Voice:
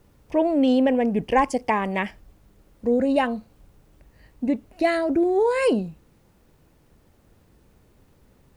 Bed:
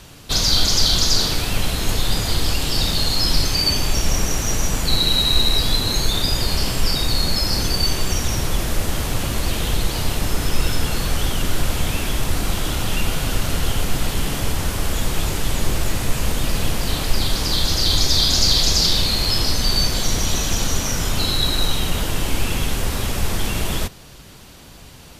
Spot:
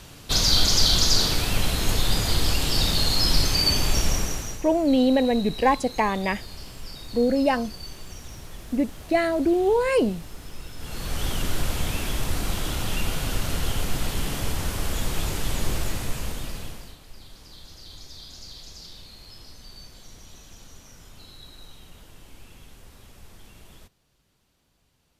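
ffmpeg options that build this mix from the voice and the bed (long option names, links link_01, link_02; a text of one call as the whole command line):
ffmpeg -i stem1.wav -i stem2.wav -filter_complex "[0:a]adelay=4300,volume=-0.5dB[link_01];[1:a]volume=11.5dB,afade=type=out:start_time=3.99:duration=0.64:silence=0.141254,afade=type=in:start_time=10.76:duration=0.55:silence=0.199526,afade=type=out:start_time=15.73:duration=1.24:silence=0.0891251[link_02];[link_01][link_02]amix=inputs=2:normalize=0" out.wav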